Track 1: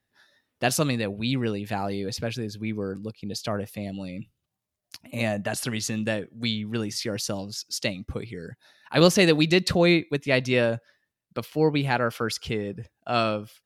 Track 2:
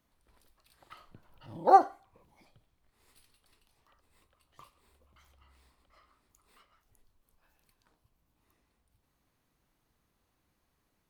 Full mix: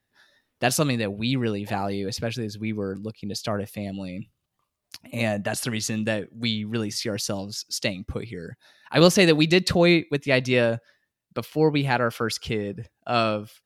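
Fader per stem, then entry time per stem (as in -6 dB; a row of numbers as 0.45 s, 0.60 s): +1.5 dB, -19.0 dB; 0.00 s, 0.00 s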